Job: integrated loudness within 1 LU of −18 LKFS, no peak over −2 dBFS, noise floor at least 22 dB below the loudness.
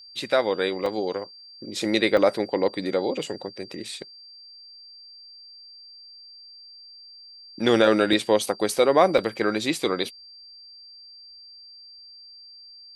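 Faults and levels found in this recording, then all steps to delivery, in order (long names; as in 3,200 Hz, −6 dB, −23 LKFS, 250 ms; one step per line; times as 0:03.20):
number of dropouts 4; longest dropout 3.4 ms; interfering tone 4,700 Hz; level of the tone −44 dBFS; integrated loudness −23.5 LKFS; sample peak −4.5 dBFS; target loudness −18.0 LKFS
→ repair the gap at 0:00.86/0:02.17/0:08.13/0:09.18, 3.4 ms
notch filter 4,700 Hz, Q 30
level +5.5 dB
brickwall limiter −2 dBFS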